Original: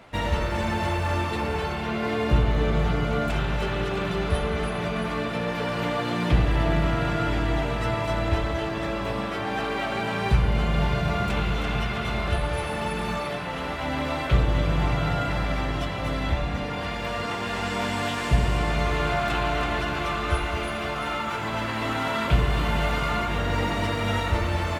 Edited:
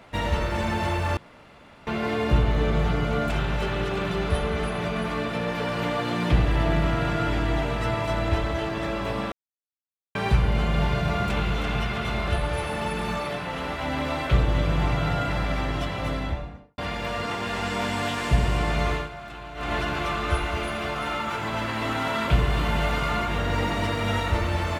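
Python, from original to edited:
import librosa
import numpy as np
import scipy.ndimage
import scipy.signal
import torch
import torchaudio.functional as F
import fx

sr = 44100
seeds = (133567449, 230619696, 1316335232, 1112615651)

y = fx.studio_fade_out(x, sr, start_s=16.03, length_s=0.75)
y = fx.edit(y, sr, fx.room_tone_fill(start_s=1.17, length_s=0.7),
    fx.silence(start_s=9.32, length_s=0.83),
    fx.fade_down_up(start_s=18.91, length_s=0.82, db=-14.0, fade_s=0.18), tone=tone)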